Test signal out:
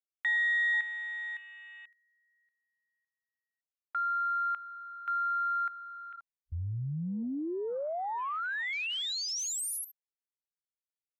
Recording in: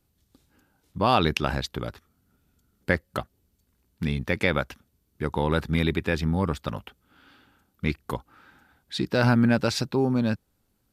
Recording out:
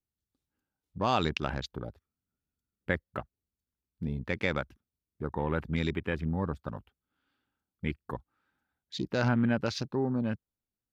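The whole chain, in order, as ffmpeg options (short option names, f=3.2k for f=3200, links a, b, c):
-af "afwtdn=0.0158,volume=-6.5dB"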